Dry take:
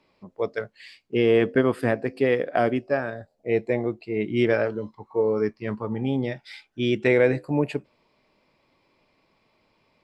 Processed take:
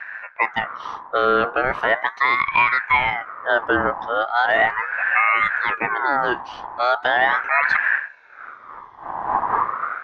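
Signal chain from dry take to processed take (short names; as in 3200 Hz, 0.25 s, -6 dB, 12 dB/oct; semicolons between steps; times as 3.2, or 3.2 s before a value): wind noise 140 Hz -33 dBFS; Bessel low-pass 2700 Hz, order 2; band shelf 770 Hz +9 dB 1.1 oct; limiter -13.5 dBFS, peak gain reduction 8.5 dB; frequency shift +14 Hz; ring modulator with a swept carrier 1300 Hz, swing 30%, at 0.38 Hz; gain +7.5 dB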